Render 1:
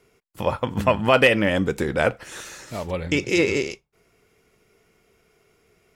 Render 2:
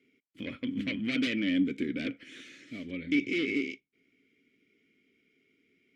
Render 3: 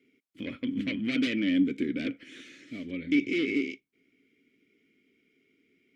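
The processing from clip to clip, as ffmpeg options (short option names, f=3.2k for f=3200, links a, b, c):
-filter_complex "[0:a]aeval=exprs='0.596*sin(PI/2*3.16*val(0)/0.596)':c=same,asplit=3[a][b][c];[a]bandpass=f=270:t=q:w=8,volume=0dB[d];[b]bandpass=f=2.29k:t=q:w=8,volume=-6dB[e];[c]bandpass=f=3.01k:t=q:w=8,volume=-9dB[f];[d][e][f]amix=inputs=3:normalize=0,volume=-8.5dB"
-af "equalizer=f=310:t=o:w=1.1:g=3"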